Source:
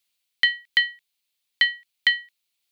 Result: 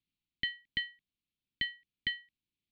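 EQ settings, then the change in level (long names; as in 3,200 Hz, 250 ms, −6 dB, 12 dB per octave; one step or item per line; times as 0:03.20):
Chebyshev band-stop filter 270–2,700 Hz, order 2
high-frequency loss of the air 280 metres
tilt shelving filter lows +9 dB, about 820 Hz
0.0 dB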